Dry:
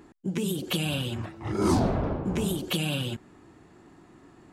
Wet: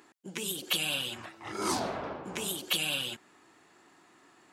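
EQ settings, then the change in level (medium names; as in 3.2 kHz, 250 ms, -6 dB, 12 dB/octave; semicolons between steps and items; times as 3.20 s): high-pass 1.5 kHz 6 dB/octave; +3.0 dB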